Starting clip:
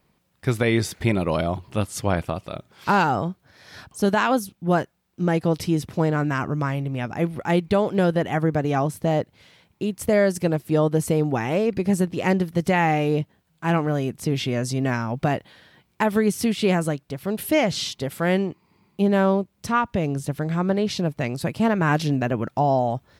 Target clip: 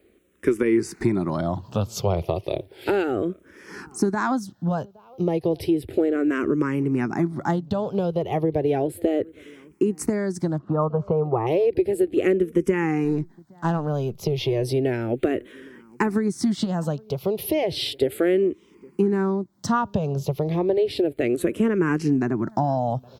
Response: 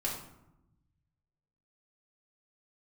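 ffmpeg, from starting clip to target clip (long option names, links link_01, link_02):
-filter_complex "[0:a]asettb=1/sr,asplit=3[link_01][link_02][link_03];[link_01]atrim=end=13.044[link_04];[link_02]atrim=start=13.04:end=14.59,asetpts=PTS-STARTPTS,afade=type=in:duration=0.004:curve=qsin,afade=type=out:start_time=1.546:duration=0.004:curve=qsin,aeval=exprs='if(lt(val(0),0),0.708*val(0),val(0))':channel_layout=same[link_05];[link_03]atrim=start=14.586[link_06];[link_04][link_05]acrossfade=duration=0.004:curve1=hsin:curve2=qsin[link_07];[link_07][link_06]acrossfade=duration=0.004:curve1=qsin:curve2=hsin,equalizer=frequency=370:width=1.6:gain=13.5,acrossover=split=100[link_08][link_09];[link_09]acompressor=threshold=-20dB:ratio=6[link_10];[link_08][link_10]amix=inputs=2:normalize=0,asettb=1/sr,asplit=3[link_11][link_12][link_13];[link_11]atrim=end=10.584[link_14];[link_12]atrim=start=10.58:end=11.47,asetpts=PTS-STARTPTS,afade=type=in:duration=0.004:curve=qsin,afade=type=out:start_time=0.886:duration=0.004:curve=qsin,lowpass=frequency=1200:width_type=q:width=4.9[link_15];[link_13]atrim=start=11.466[link_16];[link_14][link_15]acrossfade=duration=0.004:curve1=hsin:curve2=qsin[link_17];[link_17][link_16]acrossfade=duration=0.004:curve1=qsin:curve2=hsin,asplit=2[link_18][link_19];[link_19]adelay=816.3,volume=-25dB,highshelf=frequency=4000:gain=-18.4[link_20];[link_18][link_20]amix=inputs=2:normalize=0,asplit=2[link_21][link_22];[link_22]afreqshift=-0.33[link_23];[link_21][link_23]amix=inputs=2:normalize=1,volume=4dB"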